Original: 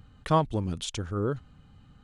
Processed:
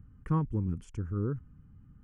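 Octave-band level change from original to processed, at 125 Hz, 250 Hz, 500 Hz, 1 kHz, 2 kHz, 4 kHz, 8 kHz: −0.5 dB, −2.0 dB, −11.0 dB, −12.5 dB, below −10 dB, below −25 dB, below −20 dB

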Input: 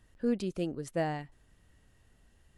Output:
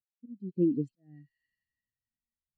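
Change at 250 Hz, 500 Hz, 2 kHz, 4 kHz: +2.5 dB, −3.0 dB, below −30 dB, below −30 dB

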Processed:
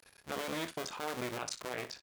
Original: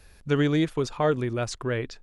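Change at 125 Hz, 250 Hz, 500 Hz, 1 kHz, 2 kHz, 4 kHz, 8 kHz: −22.0, −17.5, −14.5, −8.0, −7.5, −5.0, −2.0 decibels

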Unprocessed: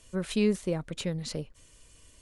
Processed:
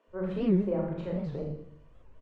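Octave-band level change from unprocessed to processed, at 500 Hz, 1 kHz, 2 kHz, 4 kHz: 0.0 dB, +2.5 dB, −8.5 dB, below −15 dB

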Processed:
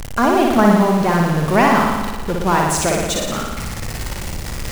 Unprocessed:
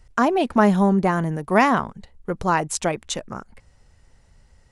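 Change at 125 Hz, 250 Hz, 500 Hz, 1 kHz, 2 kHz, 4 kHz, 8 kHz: +6.0, +5.0, +5.0, +5.0, +5.0, +8.5, +8.5 decibels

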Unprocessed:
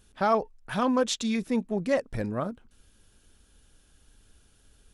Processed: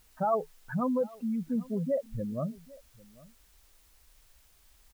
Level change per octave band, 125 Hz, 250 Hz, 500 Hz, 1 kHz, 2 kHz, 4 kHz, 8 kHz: 0.0 dB, −3.0 dB, −3.5 dB, −5.0 dB, −12.5 dB, below −25 dB, below −15 dB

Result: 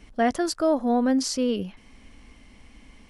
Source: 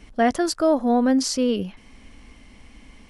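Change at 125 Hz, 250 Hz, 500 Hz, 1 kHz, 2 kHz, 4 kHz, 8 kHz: −3.0, −3.0, −3.0, −3.0, −3.0, −3.0, −3.0 decibels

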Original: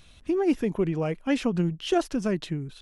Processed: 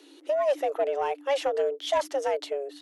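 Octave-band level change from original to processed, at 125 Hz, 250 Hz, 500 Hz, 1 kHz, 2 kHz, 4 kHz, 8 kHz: below −35 dB, −20.5 dB, +3.0 dB, +5.5 dB, −0.5 dB, +0.5 dB, +0.5 dB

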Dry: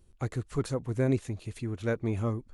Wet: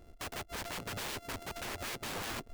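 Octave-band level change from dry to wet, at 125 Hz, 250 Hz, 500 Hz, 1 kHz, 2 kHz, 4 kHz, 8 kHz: −18.0, −15.5, −12.5, +2.0, +2.0, +9.5, +6.0 decibels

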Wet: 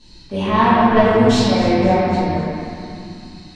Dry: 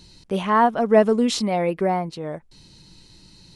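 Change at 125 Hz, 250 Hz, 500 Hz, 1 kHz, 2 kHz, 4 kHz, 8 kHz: +11.0, +7.0, +3.5, +5.0, +7.0, +6.0, +1.0 decibels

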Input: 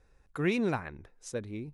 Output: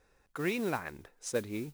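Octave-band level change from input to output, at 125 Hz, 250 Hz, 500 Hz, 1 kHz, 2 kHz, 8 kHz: −5.5, −4.0, −1.0, −0.5, −1.0, +5.0 decibels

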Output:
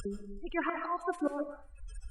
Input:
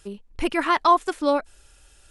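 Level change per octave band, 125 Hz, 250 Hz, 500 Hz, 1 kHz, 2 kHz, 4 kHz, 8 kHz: can't be measured, −9.0 dB, −12.0 dB, −16.0 dB, −10.5 dB, −22.0 dB, −12.5 dB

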